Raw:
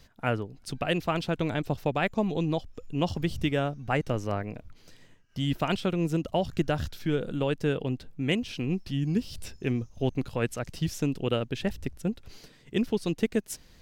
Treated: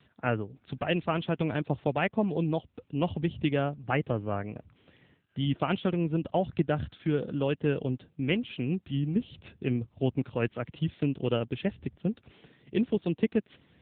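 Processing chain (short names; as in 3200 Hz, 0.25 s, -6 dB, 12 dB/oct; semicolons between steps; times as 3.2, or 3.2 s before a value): AMR-NB 7.95 kbps 8000 Hz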